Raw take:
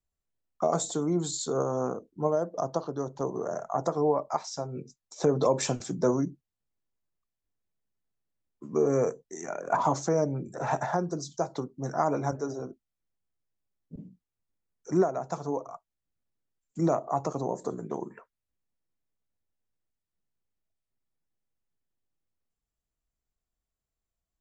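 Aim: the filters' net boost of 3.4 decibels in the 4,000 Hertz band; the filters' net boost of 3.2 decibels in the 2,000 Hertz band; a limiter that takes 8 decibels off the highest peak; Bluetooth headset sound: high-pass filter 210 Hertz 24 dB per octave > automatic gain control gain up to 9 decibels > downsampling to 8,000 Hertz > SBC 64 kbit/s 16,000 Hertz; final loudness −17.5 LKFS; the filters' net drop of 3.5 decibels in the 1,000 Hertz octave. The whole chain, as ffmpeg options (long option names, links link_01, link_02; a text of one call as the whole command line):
ffmpeg -i in.wav -af "equalizer=frequency=1000:width_type=o:gain=-6.5,equalizer=frequency=2000:width_type=o:gain=7,equalizer=frequency=4000:width_type=o:gain=3,alimiter=limit=-20.5dB:level=0:latency=1,highpass=frequency=210:width=0.5412,highpass=frequency=210:width=1.3066,dynaudnorm=maxgain=9dB,aresample=8000,aresample=44100,volume=11dB" -ar 16000 -c:a sbc -b:a 64k out.sbc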